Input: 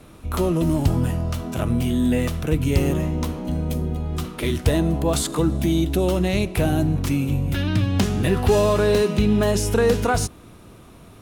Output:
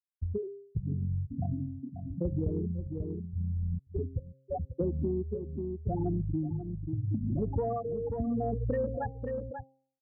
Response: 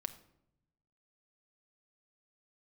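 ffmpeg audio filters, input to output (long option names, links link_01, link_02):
-filter_complex "[0:a]tremolo=f=0.72:d=0.78,asetrate=49392,aresample=44100,afftfilt=real='re*gte(hypot(re,im),0.316)':imag='im*gte(hypot(re,im),0.316)':win_size=1024:overlap=0.75,acontrast=50,bandreject=frequency=133.5:width_type=h:width=4,bandreject=frequency=267:width_type=h:width=4,bandreject=frequency=400.5:width_type=h:width=4,bandreject=frequency=534:width_type=h:width=4,bandreject=frequency=667.5:width_type=h:width=4,bandreject=frequency=801:width_type=h:width=4,asplit=2[link_01][link_02];[link_02]aecho=0:1:538:0.133[link_03];[link_01][link_03]amix=inputs=2:normalize=0,acompressor=threshold=-31dB:ratio=4,highshelf=frequency=2800:gain=-11"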